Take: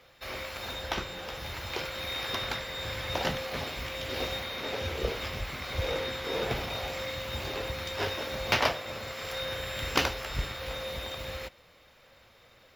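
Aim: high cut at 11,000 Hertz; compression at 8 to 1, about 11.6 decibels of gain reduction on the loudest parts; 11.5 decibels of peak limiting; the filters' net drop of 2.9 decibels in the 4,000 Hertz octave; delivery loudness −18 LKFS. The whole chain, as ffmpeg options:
ffmpeg -i in.wav -af "lowpass=11000,equalizer=frequency=4000:width_type=o:gain=-3.5,acompressor=threshold=-35dB:ratio=8,volume=22.5dB,alimiter=limit=-8.5dB:level=0:latency=1" out.wav

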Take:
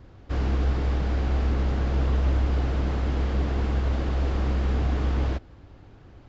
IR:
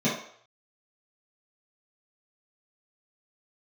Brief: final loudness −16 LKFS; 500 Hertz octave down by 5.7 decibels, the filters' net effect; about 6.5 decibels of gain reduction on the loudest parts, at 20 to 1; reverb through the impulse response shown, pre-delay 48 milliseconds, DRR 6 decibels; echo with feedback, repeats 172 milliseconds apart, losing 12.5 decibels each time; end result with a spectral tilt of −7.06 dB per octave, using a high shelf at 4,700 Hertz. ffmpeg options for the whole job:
-filter_complex "[0:a]equalizer=frequency=500:width_type=o:gain=-7.5,highshelf=frequency=4700:gain=4,acompressor=threshold=-26dB:ratio=20,aecho=1:1:172|344|516:0.237|0.0569|0.0137,asplit=2[link_01][link_02];[1:a]atrim=start_sample=2205,adelay=48[link_03];[link_02][link_03]afir=irnorm=-1:irlink=0,volume=-19dB[link_04];[link_01][link_04]amix=inputs=2:normalize=0,volume=15.5dB"

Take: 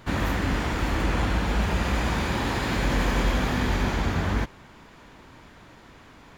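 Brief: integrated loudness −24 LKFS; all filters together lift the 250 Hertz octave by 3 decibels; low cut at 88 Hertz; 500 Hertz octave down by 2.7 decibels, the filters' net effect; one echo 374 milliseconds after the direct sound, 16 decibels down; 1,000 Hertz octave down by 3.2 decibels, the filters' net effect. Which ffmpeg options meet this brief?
ffmpeg -i in.wav -af "highpass=88,equalizer=frequency=250:width_type=o:gain=5,equalizer=frequency=500:width_type=o:gain=-4.5,equalizer=frequency=1000:width_type=o:gain=-3,aecho=1:1:374:0.158,volume=2.5dB" out.wav

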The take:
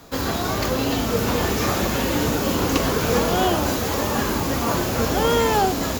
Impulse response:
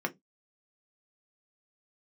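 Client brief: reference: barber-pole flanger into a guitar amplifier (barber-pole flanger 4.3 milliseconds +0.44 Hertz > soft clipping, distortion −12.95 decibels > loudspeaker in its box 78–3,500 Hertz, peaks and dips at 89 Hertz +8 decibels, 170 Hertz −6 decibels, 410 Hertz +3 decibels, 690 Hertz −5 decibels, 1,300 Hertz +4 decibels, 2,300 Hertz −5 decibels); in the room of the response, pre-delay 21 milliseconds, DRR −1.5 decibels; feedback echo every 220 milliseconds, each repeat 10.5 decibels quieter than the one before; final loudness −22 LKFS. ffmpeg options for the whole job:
-filter_complex "[0:a]aecho=1:1:220|440|660:0.299|0.0896|0.0269,asplit=2[link_01][link_02];[1:a]atrim=start_sample=2205,adelay=21[link_03];[link_02][link_03]afir=irnorm=-1:irlink=0,volume=-4.5dB[link_04];[link_01][link_04]amix=inputs=2:normalize=0,asplit=2[link_05][link_06];[link_06]adelay=4.3,afreqshift=0.44[link_07];[link_05][link_07]amix=inputs=2:normalize=1,asoftclip=threshold=-15.5dB,highpass=78,equalizer=frequency=89:width_type=q:width=4:gain=8,equalizer=frequency=170:width_type=q:width=4:gain=-6,equalizer=frequency=410:width_type=q:width=4:gain=3,equalizer=frequency=690:width_type=q:width=4:gain=-5,equalizer=frequency=1300:width_type=q:width=4:gain=4,equalizer=frequency=2300:width_type=q:width=4:gain=-5,lowpass=frequency=3500:width=0.5412,lowpass=frequency=3500:width=1.3066,volume=0.5dB"

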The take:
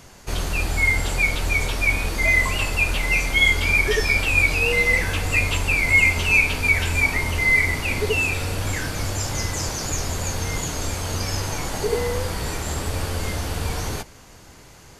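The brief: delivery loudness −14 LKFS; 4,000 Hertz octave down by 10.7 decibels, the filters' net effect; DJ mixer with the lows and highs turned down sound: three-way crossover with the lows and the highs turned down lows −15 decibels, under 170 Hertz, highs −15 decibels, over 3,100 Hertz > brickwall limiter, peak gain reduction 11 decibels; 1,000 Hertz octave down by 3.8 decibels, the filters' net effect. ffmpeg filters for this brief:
ffmpeg -i in.wav -filter_complex "[0:a]acrossover=split=170 3100:gain=0.178 1 0.178[link_01][link_02][link_03];[link_01][link_02][link_03]amix=inputs=3:normalize=0,equalizer=frequency=1000:width_type=o:gain=-4.5,equalizer=frequency=4000:width_type=o:gain=-6.5,volume=16dB,alimiter=limit=-6dB:level=0:latency=1" out.wav

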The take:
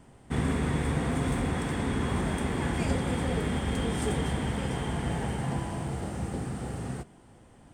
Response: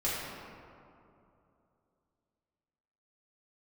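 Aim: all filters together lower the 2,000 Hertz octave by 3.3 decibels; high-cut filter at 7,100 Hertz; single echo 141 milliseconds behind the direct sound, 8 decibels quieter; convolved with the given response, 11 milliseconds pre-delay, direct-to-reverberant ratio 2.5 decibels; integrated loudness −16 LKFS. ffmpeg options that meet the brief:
-filter_complex "[0:a]lowpass=7100,equalizer=frequency=2000:width_type=o:gain=-4,aecho=1:1:141:0.398,asplit=2[link_01][link_02];[1:a]atrim=start_sample=2205,adelay=11[link_03];[link_02][link_03]afir=irnorm=-1:irlink=0,volume=-10.5dB[link_04];[link_01][link_04]amix=inputs=2:normalize=0,volume=11.5dB"

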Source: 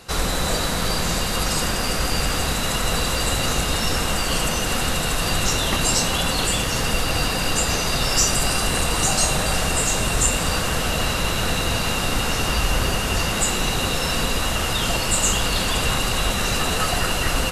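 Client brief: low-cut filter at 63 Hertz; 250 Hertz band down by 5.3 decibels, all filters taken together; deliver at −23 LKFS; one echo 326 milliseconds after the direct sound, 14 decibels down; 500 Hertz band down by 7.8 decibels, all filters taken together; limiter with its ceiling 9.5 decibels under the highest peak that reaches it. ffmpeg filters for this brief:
ffmpeg -i in.wav -af "highpass=63,equalizer=frequency=250:width_type=o:gain=-5.5,equalizer=frequency=500:width_type=o:gain=-8.5,alimiter=limit=-14.5dB:level=0:latency=1,aecho=1:1:326:0.2" out.wav

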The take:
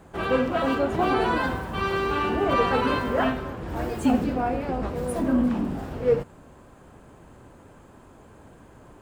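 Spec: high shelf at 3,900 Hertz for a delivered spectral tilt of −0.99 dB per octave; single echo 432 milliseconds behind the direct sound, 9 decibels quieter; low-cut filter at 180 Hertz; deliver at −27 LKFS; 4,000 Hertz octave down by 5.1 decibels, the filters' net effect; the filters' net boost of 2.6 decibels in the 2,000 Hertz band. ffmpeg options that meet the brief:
ffmpeg -i in.wav -af "highpass=180,equalizer=frequency=2000:width_type=o:gain=6.5,highshelf=frequency=3900:gain=-5,equalizer=frequency=4000:width_type=o:gain=-8,aecho=1:1:432:0.355,volume=-2dB" out.wav

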